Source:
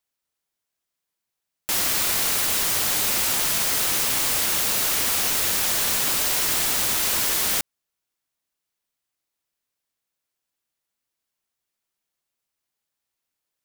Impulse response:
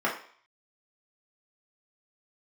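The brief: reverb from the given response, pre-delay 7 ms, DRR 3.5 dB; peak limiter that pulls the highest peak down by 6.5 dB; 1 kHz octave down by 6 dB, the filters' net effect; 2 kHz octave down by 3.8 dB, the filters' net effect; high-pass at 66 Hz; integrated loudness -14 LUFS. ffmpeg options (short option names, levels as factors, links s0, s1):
-filter_complex "[0:a]highpass=66,equalizer=f=1000:t=o:g=-7,equalizer=f=2000:t=o:g=-3,alimiter=limit=0.168:level=0:latency=1,asplit=2[s0][s1];[1:a]atrim=start_sample=2205,adelay=7[s2];[s1][s2]afir=irnorm=-1:irlink=0,volume=0.158[s3];[s0][s3]amix=inputs=2:normalize=0,volume=2.66"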